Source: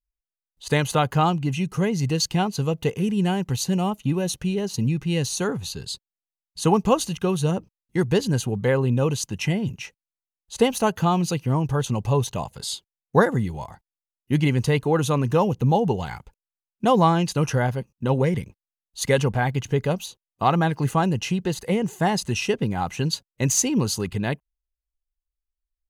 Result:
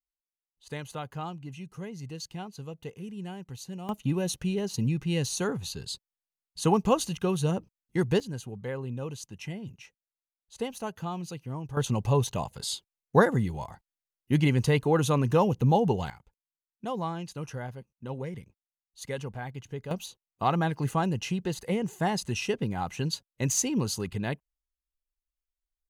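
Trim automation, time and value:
-16.5 dB
from 3.89 s -4.5 dB
from 8.20 s -14 dB
from 11.77 s -3 dB
from 16.10 s -15 dB
from 19.91 s -6 dB

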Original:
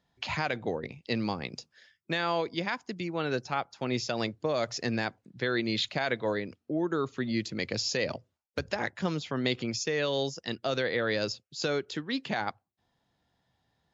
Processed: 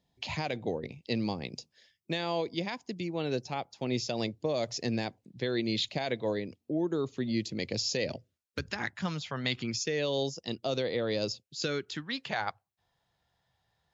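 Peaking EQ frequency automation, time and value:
peaking EQ -13 dB 0.88 oct
7.94 s 1.4 kHz
9.36 s 300 Hz
10.09 s 1.6 kHz
11.32 s 1.6 kHz
12.30 s 260 Hz

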